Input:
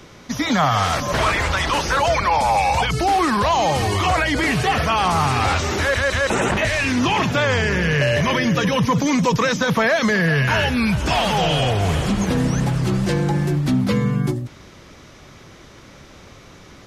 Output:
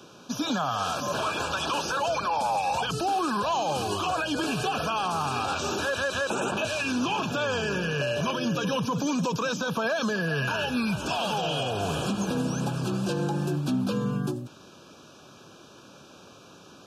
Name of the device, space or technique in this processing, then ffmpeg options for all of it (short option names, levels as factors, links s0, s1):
PA system with an anti-feedback notch: -af "highpass=170,asuperstop=centerf=2000:order=20:qfactor=3.1,alimiter=limit=0.188:level=0:latency=1:release=105,volume=0.596"